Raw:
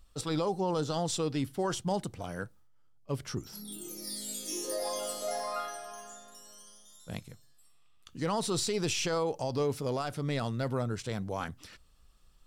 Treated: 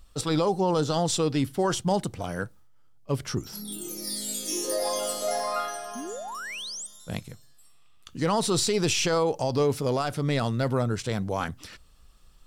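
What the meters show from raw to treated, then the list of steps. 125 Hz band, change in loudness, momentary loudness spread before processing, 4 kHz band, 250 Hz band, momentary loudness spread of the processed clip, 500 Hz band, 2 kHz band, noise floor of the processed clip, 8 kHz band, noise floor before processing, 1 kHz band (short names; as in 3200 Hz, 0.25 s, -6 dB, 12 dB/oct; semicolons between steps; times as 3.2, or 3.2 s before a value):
+6.5 dB, +6.0 dB, 17 LU, +6.5 dB, +6.5 dB, 12 LU, +6.5 dB, +7.0 dB, -53 dBFS, +6.5 dB, -60 dBFS, +6.5 dB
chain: painted sound rise, 5.95–6.87, 220–9000 Hz -43 dBFS; gain +6.5 dB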